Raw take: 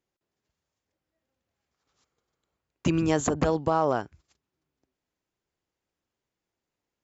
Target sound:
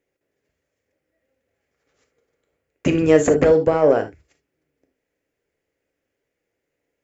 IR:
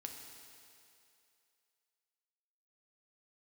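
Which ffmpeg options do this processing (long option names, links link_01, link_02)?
-filter_complex "[0:a]equalizer=frequency=500:width_type=o:width=1:gain=12,equalizer=frequency=1000:width_type=o:width=1:gain=-8,equalizer=frequency=2000:width_type=o:width=1:gain=10,equalizer=frequency=4000:width_type=o:width=1:gain=-6,acontrast=37[link_01];[1:a]atrim=start_sample=2205,atrim=end_sample=3528[link_02];[link_01][link_02]afir=irnorm=-1:irlink=0,volume=3dB"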